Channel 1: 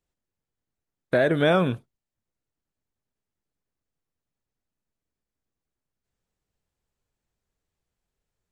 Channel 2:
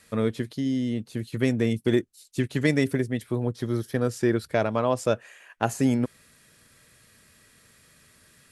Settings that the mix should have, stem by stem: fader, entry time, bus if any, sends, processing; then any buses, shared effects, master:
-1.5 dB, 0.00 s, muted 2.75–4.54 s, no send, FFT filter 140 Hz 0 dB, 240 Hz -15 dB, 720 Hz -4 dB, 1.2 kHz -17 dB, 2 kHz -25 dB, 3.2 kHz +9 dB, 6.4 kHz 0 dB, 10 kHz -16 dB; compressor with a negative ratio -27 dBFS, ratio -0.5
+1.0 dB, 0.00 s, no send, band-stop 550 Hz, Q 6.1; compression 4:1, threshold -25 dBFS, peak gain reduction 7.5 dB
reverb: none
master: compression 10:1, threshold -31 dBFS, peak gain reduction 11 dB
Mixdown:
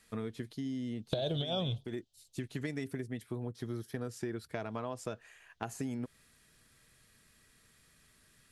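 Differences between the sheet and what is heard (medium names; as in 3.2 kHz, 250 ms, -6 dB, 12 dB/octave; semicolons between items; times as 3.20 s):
stem 1 -1.5 dB -> +7.5 dB; stem 2 +1.0 dB -> -8.5 dB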